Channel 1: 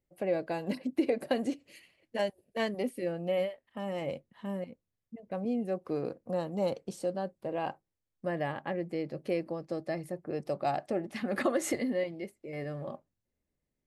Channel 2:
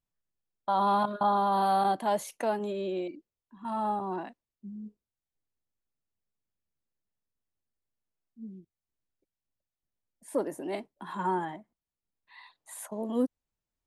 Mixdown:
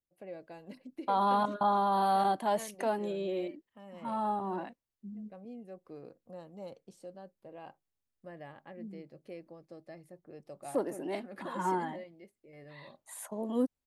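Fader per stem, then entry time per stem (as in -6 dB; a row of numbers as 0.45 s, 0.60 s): -14.5 dB, -2.0 dB; 0.00 s, 0.40 s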